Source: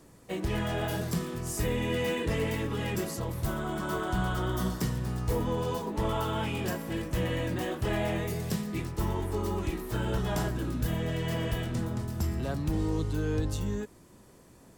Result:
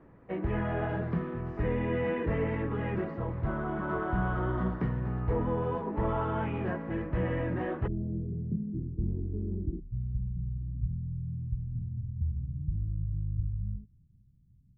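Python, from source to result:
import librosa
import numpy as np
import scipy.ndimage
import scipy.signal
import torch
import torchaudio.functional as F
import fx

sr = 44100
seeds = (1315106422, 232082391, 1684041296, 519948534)

y = fx.cheby2_lowpass(x, sr, hz=fx.steps((0.0, 10000.0), (7.86, 1800.0), (9.79, 860.0)), order=4, stop_db=80)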